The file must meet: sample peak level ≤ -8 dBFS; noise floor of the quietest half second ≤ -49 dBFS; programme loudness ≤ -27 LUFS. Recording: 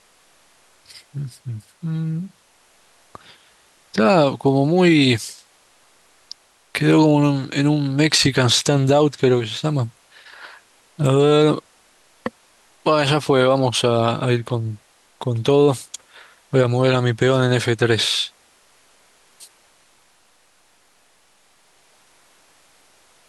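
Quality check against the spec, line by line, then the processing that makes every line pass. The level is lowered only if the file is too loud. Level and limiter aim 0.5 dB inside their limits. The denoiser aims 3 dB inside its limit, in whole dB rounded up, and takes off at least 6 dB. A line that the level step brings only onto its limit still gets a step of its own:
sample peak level -5.0 dBFS: fail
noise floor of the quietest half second -57 dBFS: pass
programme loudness -18.0 LUFS: fail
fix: trim -9.5 dB

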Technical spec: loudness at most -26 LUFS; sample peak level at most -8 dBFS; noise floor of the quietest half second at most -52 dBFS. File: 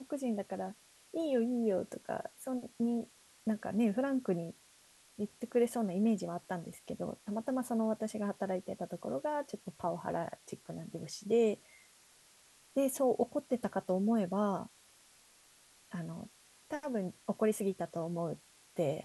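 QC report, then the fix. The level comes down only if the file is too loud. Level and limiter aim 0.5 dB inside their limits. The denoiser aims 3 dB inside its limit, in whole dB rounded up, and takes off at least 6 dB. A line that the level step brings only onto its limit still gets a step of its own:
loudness -36.0 LUFS: pass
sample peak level -19.5 dBFS: pass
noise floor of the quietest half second -64 dBFS: pass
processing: none needed

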